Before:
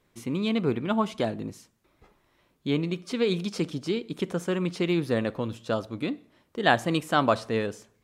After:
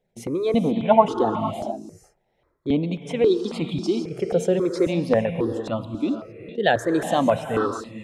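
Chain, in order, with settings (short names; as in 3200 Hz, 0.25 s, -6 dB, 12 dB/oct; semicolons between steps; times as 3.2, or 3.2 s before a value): formant sharpening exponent 1.5; gate -52 dBFS, range -11 dB; bell 770 Hz +10.5 dB 0.81 oct, from 5.26 s -4 dB; non-linear reverb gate 0.49 s rising, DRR 7.5 dB; step phaser 3.7 Hz 300–1600 Hz; gain +7.5 dB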